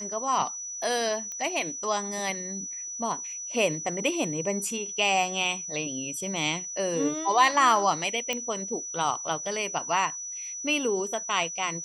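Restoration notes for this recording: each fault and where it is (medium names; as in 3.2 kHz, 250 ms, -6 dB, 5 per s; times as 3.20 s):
whine 5.9 kHz -34 dBFS
1.32 s: pop -23 dBFS
8.33 s: pop -14 dBFS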